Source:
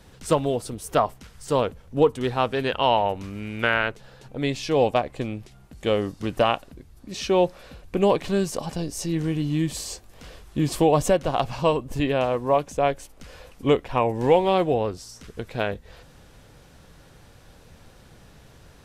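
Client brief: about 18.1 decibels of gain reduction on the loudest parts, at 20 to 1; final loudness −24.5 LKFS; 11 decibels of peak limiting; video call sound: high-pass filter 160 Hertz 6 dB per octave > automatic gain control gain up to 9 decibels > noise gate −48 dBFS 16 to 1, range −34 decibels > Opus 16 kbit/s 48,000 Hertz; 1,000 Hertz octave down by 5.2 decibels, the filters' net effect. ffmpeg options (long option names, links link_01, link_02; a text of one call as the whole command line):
ffmpeg -i in.wav -af "equalizer=frequency=1000:width_type=o:gain=-7,acompressor=threshold=-32dB:ratio=20,alimiter=level_in=6dB:limit=-24dB:level=0:latency=1,volume=-6dB,highpass=frequency=160:poles=1,dynaudnorm=maxgain=9dB,agate=range=-34dB:threshold=-48dB:ratio=16,volume=14.5dB" -ar 48000 -c:a libopus -b:a 16k out.opus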